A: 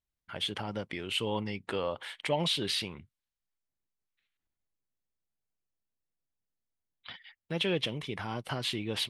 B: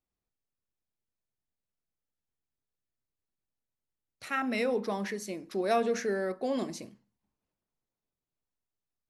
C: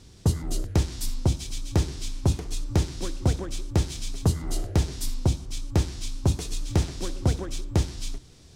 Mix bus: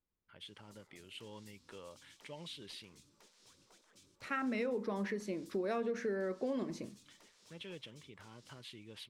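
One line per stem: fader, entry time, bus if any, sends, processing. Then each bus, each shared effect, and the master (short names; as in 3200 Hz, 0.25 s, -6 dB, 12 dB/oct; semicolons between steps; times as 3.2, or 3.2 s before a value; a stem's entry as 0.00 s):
-18.0 dB, 0.00 s, no send, dry
+0.5 dB, 0.00 s, no send, LPF 1800 Hz 6 dB/oct
-17.5 dB, 0.45 s, no send, spectral gate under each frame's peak -20 dB weak; compressor 6:1, threshold -42 dBFS, peak gain reduction 11 dB; soft clip -36 dBFS, distortion -15 dB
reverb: off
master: bell 730 Hz -8.5 dB 0.32 oct; compressor 6:1, threshold -33 dBFS, peak gain reduction 8 dB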